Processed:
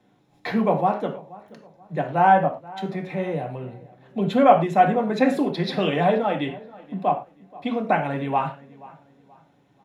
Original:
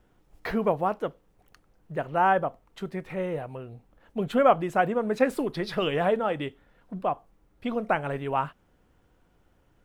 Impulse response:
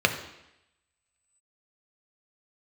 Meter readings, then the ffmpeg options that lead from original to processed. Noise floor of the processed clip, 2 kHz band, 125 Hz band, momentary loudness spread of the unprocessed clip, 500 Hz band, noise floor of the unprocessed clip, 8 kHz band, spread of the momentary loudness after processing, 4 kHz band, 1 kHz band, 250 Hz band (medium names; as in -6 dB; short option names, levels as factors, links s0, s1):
-61 dBFS, +3.0 dB, +7.0 dB, 14 LU, +3.5 dB, -65 dBFS, no reading, 16 LU, +4.0 dB, +6.5 dB, +7.0 dB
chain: -filter_complex "[0:a]asplit=2[s0][s1];[s1]adelay=480,lowpass=f=2400:p=1,volume=0.0944,asplit=2[s2][s3];[s3]adelay=480,lowpass=f=2400:p=1,volume=0.35,asplit=2[s4][s5];[s5]adelay=480,lowpass=f=2400:p=1,volume=0.35[s6];[s0][s2][s4][s6]amix=inputs=4:normalize=0[s7];[1:a]atrim=start_sample=2205,afade=t=out:st=0.23:d=0.01,atrim=end_sample=10584,asetrate=66150,aresample=44100[s8];[s7][s8]afir=irnorm=-1:irlink=0,volume=0.473"